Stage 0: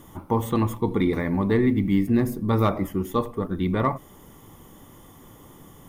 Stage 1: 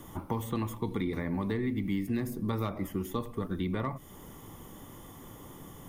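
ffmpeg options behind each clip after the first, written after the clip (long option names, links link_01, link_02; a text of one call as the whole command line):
ffmpeg -i in.wav -filter_complex "[0:a]acrossover=split=260|1700[link_01][link_02][link_03];[link_01]acompressor=threshold=-34dB:ratio=4[link_04];[link_02]acompressor=threshold=-37dB:ratio=4[link_05];[link_03]acompressor=threshold=-45dB:ratio=4[link_06];[link_04][link_05][link_06]amix=inputs=3:normalize=0" out.wav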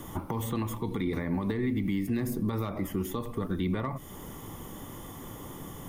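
ffmpeg -i in.wav -af "alimiter=level_in=3dB:limit=-24dB:level=0:latency=1:release=108,volume=-3dB,volume=5.5dB" out.wav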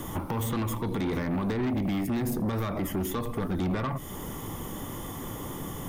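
ffmpeg -i in.wav -af "aeval=exprs='0.0891*(cos(1*acos(clip(val(0)/0.0891,-1,1)))-cos(1*PI/2))+0.0178*(cos(5*acos(clip(val(0)/0.0891,-1,1)))-cos(5*PI/2))':channel_layout=same" out.wav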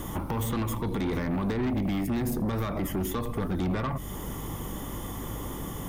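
ffmpeg -i in.wav -af "aeval=exprs='val(0)+0.0112*(sin(2*PI*50*n/s)+sin(2*PI*2*50*n/s)/2+sin(2*PI*3*50*n/s)/3+sin(2*PI*4*50*n/s)/4+sin(2*PI*5*50*n/s)/5)':channel_layout=same" out.wav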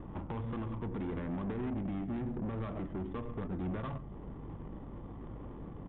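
ffmpeg -i in.wav -filter_complex "[0:a]asplit=2[link_01][link_02];[link_02]adelay=134.1,volume=-13dB,highshelf=frequency=4000:gain=-3.02[link_03];[link_01][link_03]amix=inputs=2:normalize=0,adynamicsmooth=sensitivity=2.5:basefreq=560,aresample=8000,aresample=44100,volume=-8.5dB" out.wav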